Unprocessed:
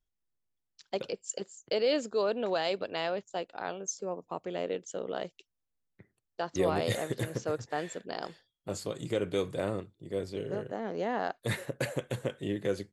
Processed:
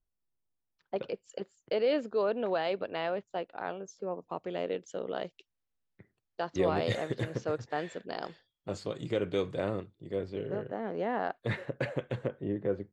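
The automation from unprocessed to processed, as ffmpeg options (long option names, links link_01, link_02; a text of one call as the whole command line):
ffmpeg -i in.wav -af "asetnsamples=nb_out_samples=441:pad=0,asendcmd='0.96 lowpass f 2600;4.18 lowpass f 4500;10.16 lowpass f 2800;12.27 lowpass f 1200',lowpass=1300" out.wav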